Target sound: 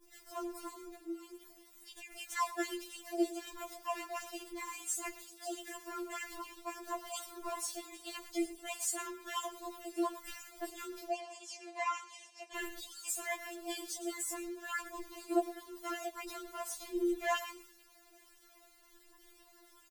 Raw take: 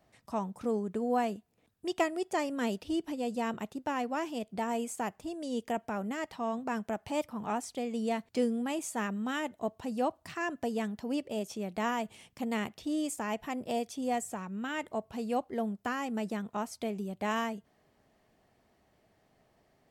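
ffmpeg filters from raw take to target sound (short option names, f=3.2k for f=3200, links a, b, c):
-filter_complex "[0:a]aeval=exprs='val(0)+0.5*0.00631*sgn(val(0))':c=same,aemphasis=mode=production:type=cd,agate=range=-33dB:threshold=-39dB:ratio=3:detection=peak,asettb=1/sr,asplit=3[a][b][c];[a]atrim=end=0.854[d];[b]atrim=start=0.85:end=2.11,asetpts=PTS-STARTPTS,afade=t=in:d=0.004:c=qsin,afade=t=out:st=1.256:d=0.004:c=qsin,acompressor=threshold=-37dB:ratio=12[e];[c]atrim=start=2.106[f];[d][e]acrossfade=d=0.004:c1=hsin:c2=qsin[g];[g][f]acrossfade=d=0.004:c1=qsin:c2=hsin,aphaser=in_gain=1:out_gain=1:delay=4.1:decay=0.63:speed=0.47:type=triangular,aeval=exprs='val(0)*sin(2*PI*160*n/s)':c=same,flanger=delay=4.4:depth=5.4:regen=68:speed=0.12:shape=sinusoidal,asettb=1/sr,asplit=3[h][i][j];[h]atrim=end=11.084[k];[i]atrim=start=11.08:end=12.56,asetpts=PTS-STARTPTS,afade=t=in:d=0.004:c=qsin,afade=t=out:st=1.476:d=0.004:c=qsin,highpass=f=470:w=0.5412,highpass=f=470:w=1.3066,equalizer=f=800:t=q:w=4:g=4,equalizer=f=1.4k:t=q:w=4:g=-9,equalizer=f=3.6k:t=q:w=4:g=-7,lowpass=f=7.2k:w=0.5412,lowpass=f=7.2k:w=1.3066[l];[j]atrim=start=12.556[m];[k][l]acrossfade=d=0.004:c1=hsin:c2=qsin[n];[n][m]acrossfade=d=0.004:c1=qsin:c2=hsin,asplit=2[o][p];[p]adelay=110.8,volume=-15dB,highshelf=f=4k:g=-2.49[q];[o][q]amix=inputs=2:normalize=0,afftfilt=real='re*4*eq(mod(b,16),0)':imag='im*4*eq(mod(b,16),0)':win_size=2048:overlap=0.75,volume=3dB"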